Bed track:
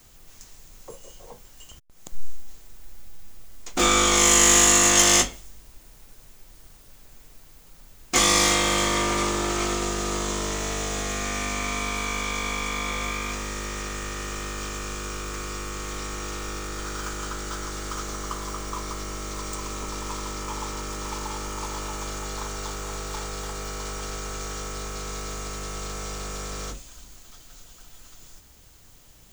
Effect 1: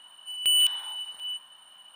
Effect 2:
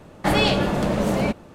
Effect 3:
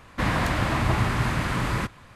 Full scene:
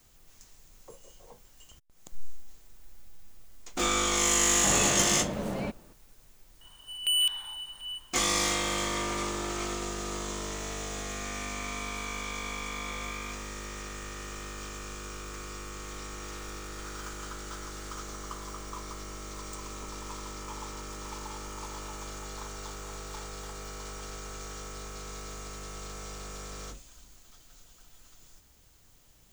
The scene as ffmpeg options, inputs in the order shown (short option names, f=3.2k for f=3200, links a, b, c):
-filter_complex "[0:a]volume=-8dB[a];[3:a]aderivative[b];[2:a]atrim=end=1.54,asetpts=PTS-STARTPTS,volume=-11.5dB,afade=t=in:d=0.004:c=hsin,afade=t=out:st=1.536:d=0.004:c=hsin,adelay=4390[c];[1:a]atrim=end=1.95,asetpts=PTS-STARTPTS,volume=-4dB,afade=t=in:d=0.004:c=hsin,afade=t=out:st=1.946:d=0.004:c=hsin,adelay=6610[d];[b]atrim=end=2.15,asetpts=PTS-STARTPTS,volume=-17dB,afade=t=in:d=0.004:c=hsin,afade=t=out:st=2.146:d=0.004:c=hsin,adelay=16030[e];[a][c][d][e]amix=inputs=4:normalize=0"